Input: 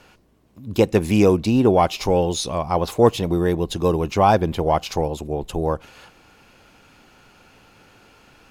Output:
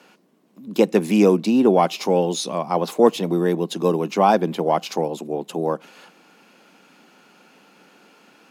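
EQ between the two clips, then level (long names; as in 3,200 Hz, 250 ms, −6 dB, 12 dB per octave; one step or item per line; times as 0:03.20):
Butterworth high-pass 170 Hz 48 dB per octave
low-shelf EQ 330 Hz +3.5 dB
−1.0 dB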